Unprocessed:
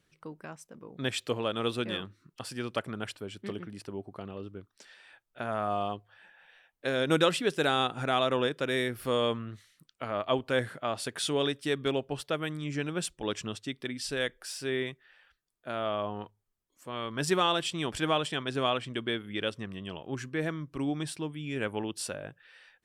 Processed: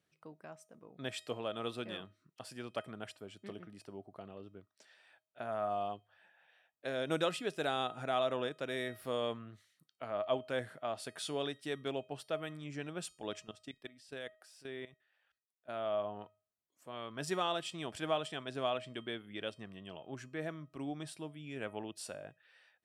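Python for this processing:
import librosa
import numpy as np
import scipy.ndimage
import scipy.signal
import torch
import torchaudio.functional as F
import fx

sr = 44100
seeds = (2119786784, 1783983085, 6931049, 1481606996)

y = scipy.signal.sosfilt(scipy.signal.butter(2, 90.0, 'highpass', fs=sr, output='sos'), x)
y = fx.peak_eq(y, sr, hz=680.0, db=6.5, octaves=0.45)
y = fx.level_steps(y, sr, step_db=17, at=(13.39, 15.68), fade=0.02)
y = fx.comb_fb(y, sr, f0_hz=630.0, decay_s=0.39, harmonics='all', damping=0.0, mix_pct=60)
y = y * librosa.db_to_amplitude(-2.0)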